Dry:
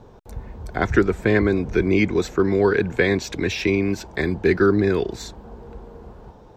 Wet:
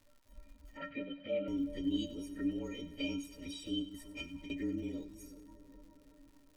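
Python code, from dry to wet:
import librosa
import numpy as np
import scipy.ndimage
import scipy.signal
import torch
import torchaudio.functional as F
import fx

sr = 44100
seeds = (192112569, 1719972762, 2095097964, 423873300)

y = fx.partial_stretch(x, sr, pct=114)
y = fx.curve_eq(y, sr, hz=(210.0, 1100.0, 2200.0), db=(0, -10, -3))
y = fx.over_compress(y, sr, threshold_db=-28.0, ratio=-0.5, at=(3.82, 4.5))
y = fx.env_flanger(y, sr, rest_ms=10.3, full_db=-22.0)
y = fx.stiff_resonator(y, sr, f0_hz=280.0, decay_s=0.28, stiffness=0.03)
y = fx.dmg_crackle(y, sr, seeds[0], per_s=170.0, level_db=-59.0)
y = fx.cabinet(y, sr, low_hz=140.0, low_slope=24, high_hz=3500.0, hz=(340.0, 560.0, 900.0, 1400.0), db=(-10, 9, -8, 10), at=(0.77, 1.48))
y = fx.echo_split(y, sr, split_hz=730.0, low_ms=372, high_ms=96, feedback_pct=52, wet_db=-14.5)
y = F.gain(torch.from_numpy(y), 3.5).numpy()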